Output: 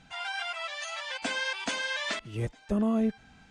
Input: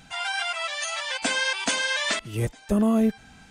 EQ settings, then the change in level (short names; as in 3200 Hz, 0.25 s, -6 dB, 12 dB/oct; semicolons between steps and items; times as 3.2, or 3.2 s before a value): air absorption 70 m; -5.5 dB